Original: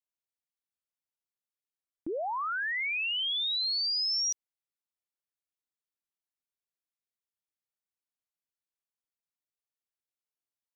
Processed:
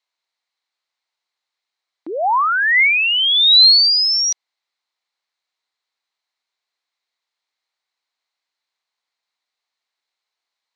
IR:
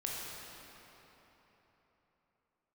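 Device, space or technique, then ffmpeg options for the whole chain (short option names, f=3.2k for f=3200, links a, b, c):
phone speaker on a table: -af "highpass=360,equalizer=f=740:t=q:w=4:g=3,equalizer=f=2.1k:t=q:w=4:g=6,equalizer=f=4.1k:t=q:w=4:g=9,lowpass=f=7.5k:w=0.5412,lowpass=f=7.5k:w=1.3066,equalizer=f=1k:t=o:w=1:g=8,equalizer=f=2k:t=o:w=1:g=3,equalizer=f=4k:t=o:w=1:g=4,volume=8.5dB"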